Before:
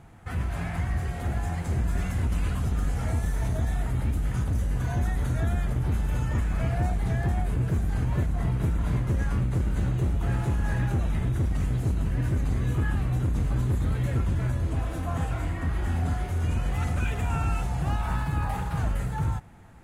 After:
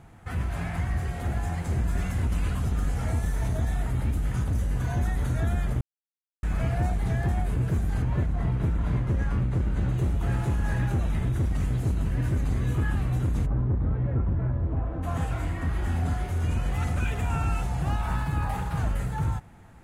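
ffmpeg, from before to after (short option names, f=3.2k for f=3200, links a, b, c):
-filter_complex "[0:a]asettb=1/sr,asplit=3[a][b][c];[a]atrim=end=8.024[d];[b]atrim=start=8.02:end=9.89,asetpts=PTS-STARTPTS,afade=t=in:d=0.004:c=qsin,afade=t=out:st=1.866:d=0.004:c=qsin,lowpass=f=3.4k:p=1[e];[c]atrim=start=9.886[f];[d][e]acrossfade=d=0.004:c1=hsin:c2=qsin[g];[g][f]acrossfade=d=0.004:c1=qsin:c2=hsin,asplit=3[h][i][j];[h]afade=t=out:st=13.45:d=0.02[k];[i]lowpass=1.1k,afade=t=in:st=13.45:d=0.02,afade=t=out:st=15.02:d=0.02[l];[j]afade=t=in:st=15.02:d=0.02[m];[k][l][m]amix=inputs=3:normalize=0,asplit=3[n][o][p];[n]atrim=end=5.81,asetpts=PTS-STARTPTS,afade=t=out:st=5.806:d=0.004:c=hsin[q];[o]atrim=start=5.81:end=6.43,asetpts=PTS-STARTPTS,volume=0[r];[p]atrim=start=6.43,asetpts=PTS-STARTPTS,afade=t=in:d=0.004:c=hsin[s];[q][r][s]concat=n=3:v=0:a=1"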